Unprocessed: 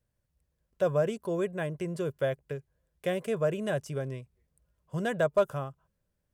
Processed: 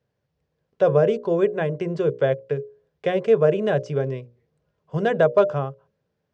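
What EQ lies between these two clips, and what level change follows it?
air absorption 78 m; speaker cabinet 120–6300 Hz, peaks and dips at 140 Hz +4 dB, 440 Hz +9 dB, 770 Hz +4 dB; notches 60/120/180/240/300/360/420/480/540/600 Hz; +7.0 dB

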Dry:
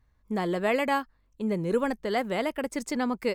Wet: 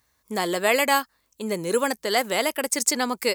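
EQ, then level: HPF 56 Hz; tone controls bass -7 dB, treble +10 dB; tilt +1.5 dB/oct; +5.5 dB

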